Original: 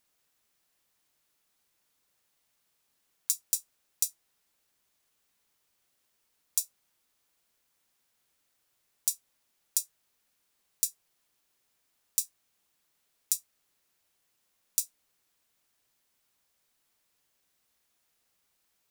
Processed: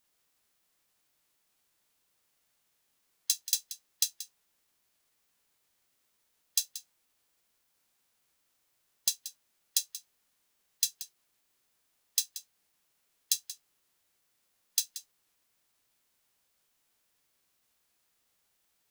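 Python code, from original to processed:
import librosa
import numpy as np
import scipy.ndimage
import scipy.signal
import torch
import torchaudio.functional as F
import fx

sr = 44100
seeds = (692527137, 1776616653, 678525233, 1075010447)

y = x + 10.0 ** (-14.0 / 20.0) * np.pad(x, (int(181 * sr / 1000.0), 0))[:len(x)]
y = fx.formant_shift(y, sr, semitones=-6)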